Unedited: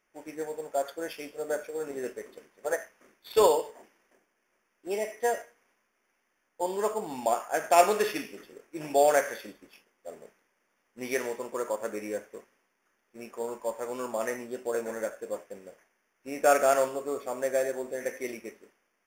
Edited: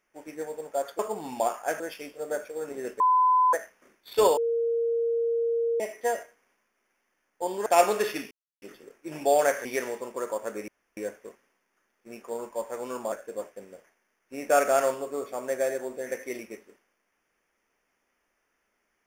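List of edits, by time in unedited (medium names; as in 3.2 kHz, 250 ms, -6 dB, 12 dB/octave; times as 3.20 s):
2.19–2.72 s: bleep 1.01 kHz -17.5 dBFS
3.56–4.99 s: bleep 464 Hz -23 dBFS
6.85–7.66 s: move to 0.99 s
8.31 s: insert silence 0.31 s
9.34–11.03 s: delete
12.06 s: insert room tone 0.29 s
14.21–15.06 s: delete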